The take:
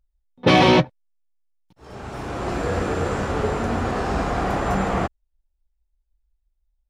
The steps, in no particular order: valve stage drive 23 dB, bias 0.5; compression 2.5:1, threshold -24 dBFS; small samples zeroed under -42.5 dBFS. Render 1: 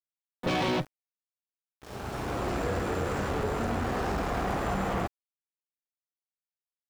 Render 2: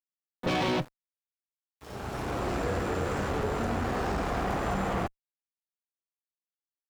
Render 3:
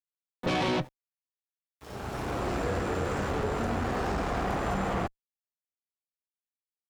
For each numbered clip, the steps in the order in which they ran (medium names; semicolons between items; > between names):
compression > valve stage > small samples zeroed; compression > small samples zeroed > valve stage; small samples zeroed > compression > valve stage